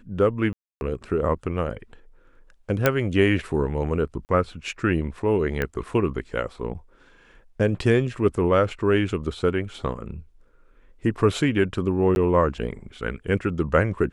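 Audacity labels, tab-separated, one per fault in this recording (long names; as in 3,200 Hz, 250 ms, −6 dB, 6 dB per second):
0.530000	0.810000	drop-out 281 ms
2.860000	2.860000	click −4 dBFS
4.250000	4.290000	drop-out 39 ms
5.620000	5.620000	click −13 dBFS
12.150000	12.160000	drop-out 11 ms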